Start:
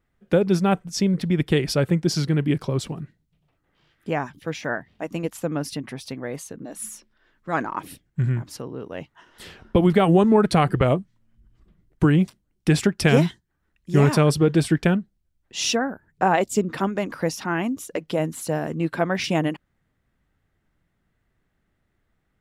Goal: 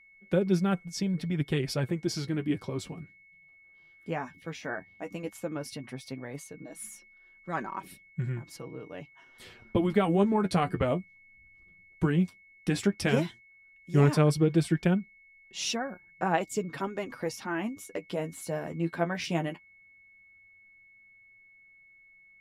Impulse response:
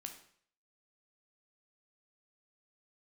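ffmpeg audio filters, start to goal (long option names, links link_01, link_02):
-af "flanger=delay=5.2:depth=6.6:regen=30:speed=0.13:shape=sinusoidal,aeval=exprs='val(0)+0.00282*sin(2*PI*2200*n/s)':channel_layout=same,volume=-4.5dB"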